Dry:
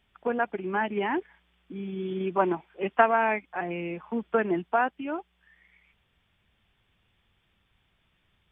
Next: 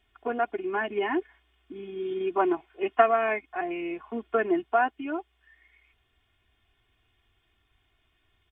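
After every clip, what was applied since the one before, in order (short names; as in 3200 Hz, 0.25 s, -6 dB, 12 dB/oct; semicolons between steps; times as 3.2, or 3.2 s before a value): comb 2.8 ms, depth 80%; gain -2.5 dB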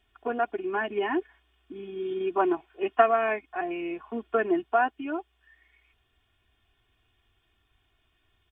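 notch 2100 Hz, Q 14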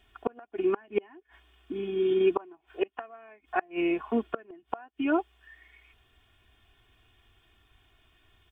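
flipped gate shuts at -21 dBFS, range -31 dB; gain +6.5 dB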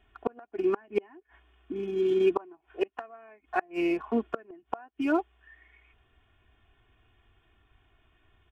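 Wiener smoothing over 9 samples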